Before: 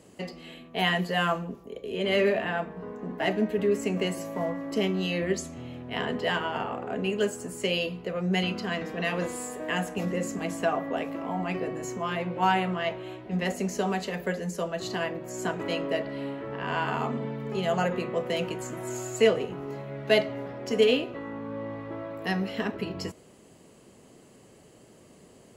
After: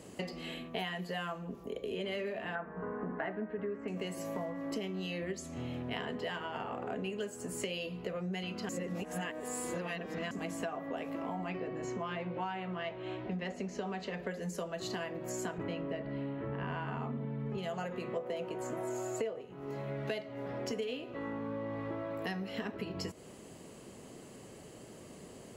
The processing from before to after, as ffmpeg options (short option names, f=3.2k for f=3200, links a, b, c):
-filter_complex "[0:a]asettb=1/sr,asplit=3[a][b][c];[a]atrim=end=2.554[d];[b]atrim=start=2.55:end=3.88,asetpts=PTS-STARTPTS,afade=t=in:d=0.004:c=qsin,afade=t=out:st=1.326:d=0.004:c=qsin,lowpass=f=1.5k:t=q:w=2.4[e];[c]atrim=start=3.876[f];[d][e]acrossfade=d=0.004:c1=hsin:c2=qsin[g];[g][f]acrossfade=d=0.004:c1=qsin:c2=hsin,asettb=1/sr,asplit=3[h][i][j];[h]atrim=end=11.494[k];[i]atrim=start=11.49:end=14.31,asetpts=PTS-STARTPTS,afade=t=in:d=0.004:c=qsin,afade=t=out:st=2.816:d=0.004:c=qsin,lowpass=4.6k[l];[j]atrim=start=14.306[m];[k][l]acrossfade=d=0.004:c1=hsin:c2=qsin[n];[n][m]acrossfade=d=0.004:c1=qsin:c2=hsin,asettb=1/sr,asplit=3[o][p][q];[o]atrim=end=15.584[r];[p]atrim=start=15.58:end=17.58,asetpts=PTS-STARTPTS,afade=t=in:d=0.004:c=qsin,afade=t=out:st=1.996:d=0.004:c=qsin,bass=f=250:g=9,treble=f=4k:g=-13[s];[q]atrim=start=17.576[t];[r][s]acrossfade=d=0.004:c1=hsin:c2=qsin[u];[u][t]acrossfade=d=0.004:c1=qsin:c2=hsin,asplit=3[v][w][x];[v]afade=t=out:st=18.16:d=0.02[y];[w]equalizer=f=610:w=0.55:g=10.5,afade=t=in:st=18.16:d=0.02,afade=t=out:st=19.4:d=0.02[z];[x]afade=t=in:st=19.4:d=0.02[aa];[y][z][aa]amix=inputs=3:normalize=0,asplit=3[ab][ac][ad];[ab]atrim=end=8.692[ae];[ac]atrim=start=8.688:end=10.312,asetpts=PTS-STARTPTS,areverse[af];[ad]atrim=start=10.308[ag];[ae][af]acrossfade=d=0.004:c1=hsin:c2=hsin[ah];[ah][ag]acrossfade=d=0.004:c1=hsin:c2=hsin,acompressor=threshold=-38dB:ratio=10,volume=3dB"